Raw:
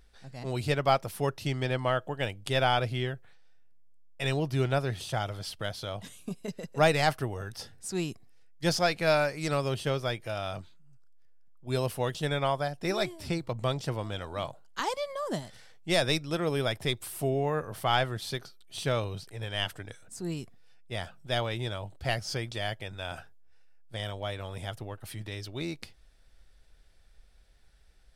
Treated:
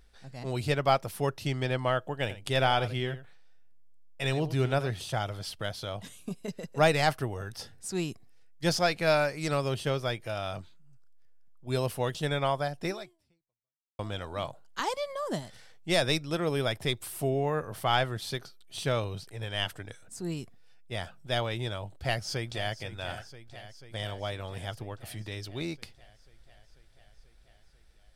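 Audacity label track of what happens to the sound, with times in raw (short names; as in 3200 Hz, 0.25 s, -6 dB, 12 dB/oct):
2.210000	4.900000	echo 84 ms -13.5 dB
12.860000	13.990000	fade out exponential
21.940000	22.750000	echo throw 0.49 s, feedback 75%, level -14 dB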